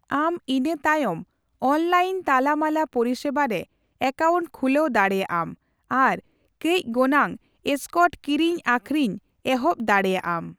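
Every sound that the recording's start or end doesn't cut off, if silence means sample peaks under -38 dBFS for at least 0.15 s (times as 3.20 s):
1.62–3.63 s
4.01–5.53 s
5.91–6.19 s
6.61–7.36 s
7.66–9.18 s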